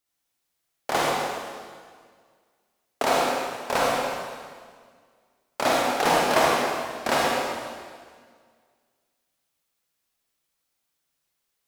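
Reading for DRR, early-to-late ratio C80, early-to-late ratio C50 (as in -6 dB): -4.5 dB, -1.0 dB, -3.0 dB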